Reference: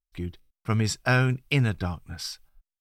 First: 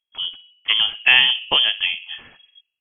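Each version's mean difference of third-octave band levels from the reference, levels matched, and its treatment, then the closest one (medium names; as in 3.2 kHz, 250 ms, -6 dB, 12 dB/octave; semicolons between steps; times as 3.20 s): 14.5 dB: peaking EQ 590 Hz +13.5 dB 1.7 oct; band-passed feedback delay 63 ms, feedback 64%, band-pass 490 Hz, level -12 dB; frequency inversion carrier 3.3 kHz; trim +1.5 dB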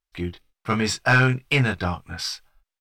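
3.5 dB: bass shelf 130 Hz +3.5 dB; doubling 23 ms -5 dB; overdrive pedal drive 15 dB, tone 3.2 kHz, clips at -7 dBFS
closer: second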